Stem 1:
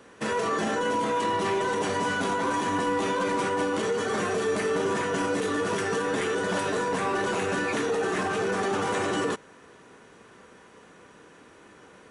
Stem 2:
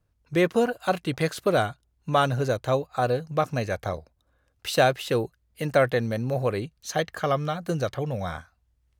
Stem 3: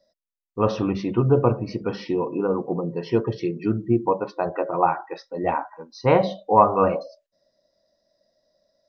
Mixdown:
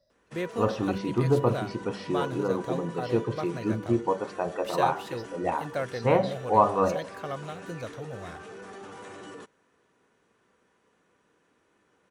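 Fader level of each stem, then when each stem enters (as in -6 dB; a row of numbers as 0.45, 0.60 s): -16.5, -11.0, -5.0 dB; 0.10, 0.00, 0.00 s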